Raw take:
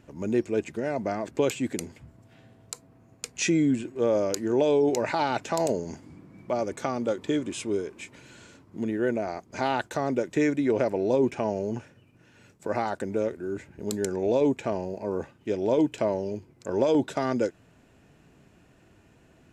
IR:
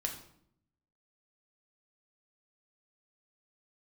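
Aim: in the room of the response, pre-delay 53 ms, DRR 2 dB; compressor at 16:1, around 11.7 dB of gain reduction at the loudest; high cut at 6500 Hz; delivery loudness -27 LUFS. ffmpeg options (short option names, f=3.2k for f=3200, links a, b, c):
-filter_complex "[0:a]lowpass=6.5k,acompressor=threshold=-30dB:ratio=16,asplit=2[a][b];[1:a]atrim=start_sample=2205,adelay=53[c];[b][c]afir=irnorm=-1:irlink=0,volume=-3.5dB[d];[a][d]amix=inputs=2:normalize=0,volume=7dB"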